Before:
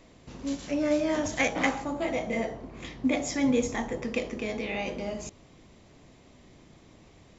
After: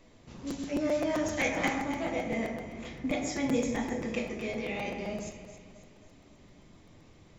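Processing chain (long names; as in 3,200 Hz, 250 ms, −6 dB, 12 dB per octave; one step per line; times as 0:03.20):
delay that swaps between a low-pass and a high-pass 135 ms, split 1,800 Hz, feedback 68%, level −8 dB
convolution reverb RT60 0.75 s, pre-delay 5 ms, DRR 3 dB
regular buffer underruns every 0.13 s, samples 256, repeat, from 0:00.37
level −5 dB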